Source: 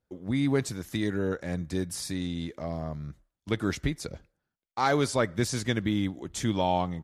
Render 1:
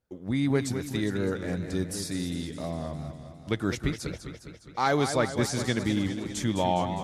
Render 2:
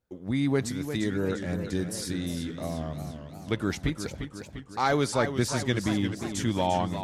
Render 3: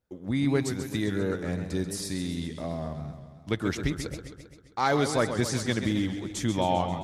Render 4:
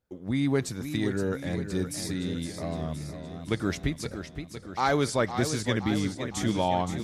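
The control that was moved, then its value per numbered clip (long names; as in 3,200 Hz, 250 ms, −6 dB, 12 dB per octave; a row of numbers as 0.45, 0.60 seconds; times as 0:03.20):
feedback echo with a swinging delay time, delay time: 204, 352, 132, 515 milliseconds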